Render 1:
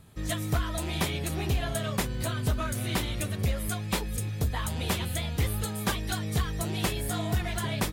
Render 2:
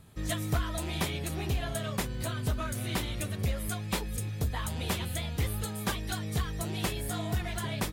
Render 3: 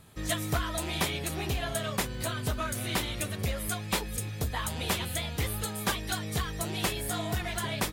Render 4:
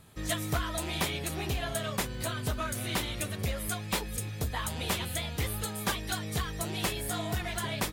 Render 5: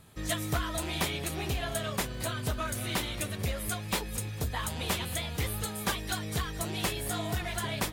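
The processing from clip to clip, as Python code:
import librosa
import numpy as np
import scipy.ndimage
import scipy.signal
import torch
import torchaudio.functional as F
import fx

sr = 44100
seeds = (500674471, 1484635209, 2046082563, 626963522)

y1 = fx.rider(x, sr, range_db=10, speed_s=2.0)
y1 = y1 * 10.0 ** (-3.0 / 20.0)
y2 = fx.low_shelf(y1, sr, hz=300.0, db=-6.5)
y2 = y2 * 10.0 ** (4.0 / 20.0)
y3 = np.minimum(y2, 2.0 * 10.0 ** (-22.0 / 20.0) - y2)
y3 = y3 * 10.0 ** (-1.0 / 20.0)
y4 = fx.echo_feedback(y3, sr, ms=226, feedback_pct=59, wet_db=-19)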